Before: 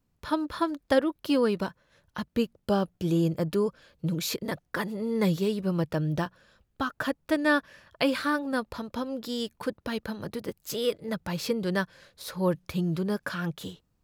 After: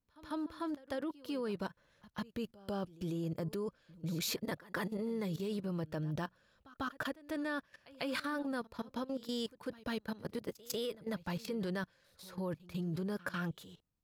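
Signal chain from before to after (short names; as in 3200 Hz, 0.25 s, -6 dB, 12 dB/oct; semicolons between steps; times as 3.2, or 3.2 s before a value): level quantiser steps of 17 dB; pre-echo 0.147 s -20 dB; gain -2.5 dB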